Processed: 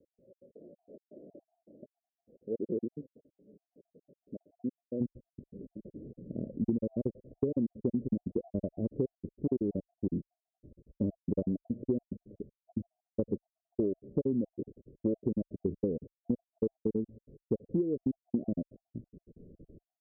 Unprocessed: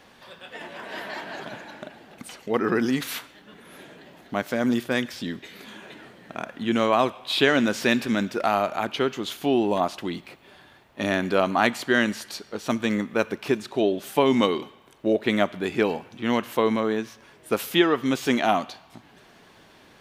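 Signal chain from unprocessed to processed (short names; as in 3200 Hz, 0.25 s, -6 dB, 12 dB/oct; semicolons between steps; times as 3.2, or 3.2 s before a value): random spectral dropouts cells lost 54%; steep low-pass 560 Hz 72 dB/oct; tilt +2 dB/oct, from 5 s -4 dB/oct; compressor 12:1, threshold -22 dBFS, peak gain reduction 14.5 dB; gain -4.5 dB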